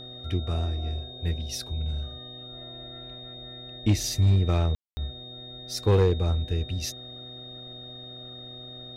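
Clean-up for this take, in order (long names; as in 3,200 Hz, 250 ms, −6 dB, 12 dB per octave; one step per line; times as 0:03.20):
clipped peaks rebuilt −14 dBFS
hum removal 124.6 Hz, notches 6
notch filter 3,700 Hz, Q 30
ambience match 0:04.75–0:04.97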